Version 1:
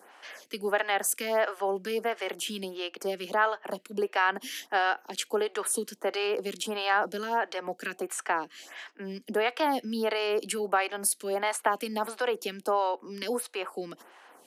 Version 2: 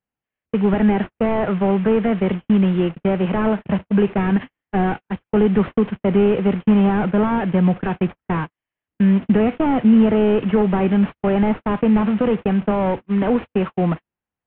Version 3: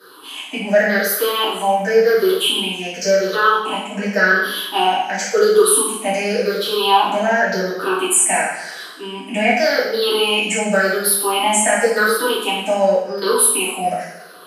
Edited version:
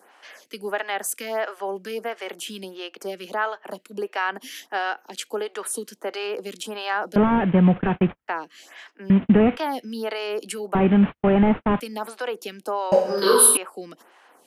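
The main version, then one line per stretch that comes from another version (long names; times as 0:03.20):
1
0:07.16–0:08.28: punch in from 2
0:09.10–0:09.57: punch in from 2
0:10.75–0:11.80: punch in from 2
0:12.92–0:13.57: punch in from 3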